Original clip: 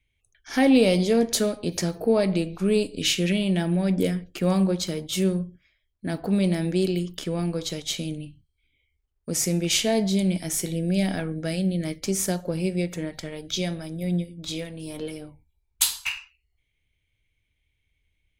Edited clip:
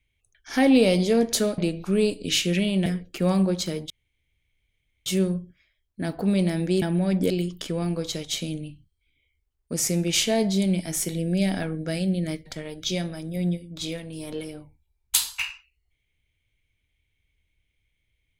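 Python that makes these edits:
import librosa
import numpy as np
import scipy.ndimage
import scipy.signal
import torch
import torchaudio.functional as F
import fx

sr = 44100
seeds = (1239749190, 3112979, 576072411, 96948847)

y = fx.edit(x, sr, fx.cut(start_s=1.58, length_s=0.73),
    fx.move(start_s=3.59, length_s=0.48, to_s=6.87),
    fx.insert_room_tone(at_s=5.11, length_s=1.16),
    fx.cut(start_s=12.03, length_s=1.1), tone=tone)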